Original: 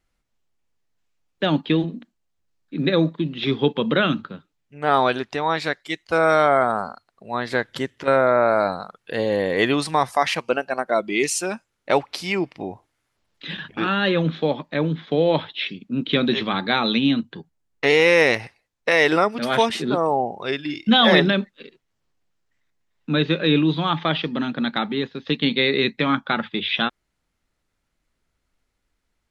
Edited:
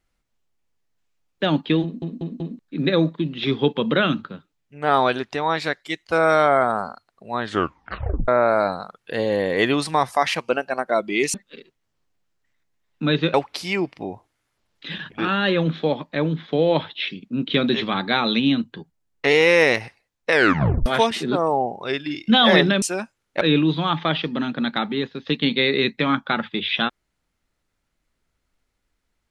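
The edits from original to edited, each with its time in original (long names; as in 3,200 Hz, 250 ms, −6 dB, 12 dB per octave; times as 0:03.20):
0:01.83: stutter in place 0.19 s, 4 plays
0:07.39: tape stop 0.89 s
0:11.34–0:11.93: swap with 0:21.41–0:23.41
0:18.90: tape stop 0.55 s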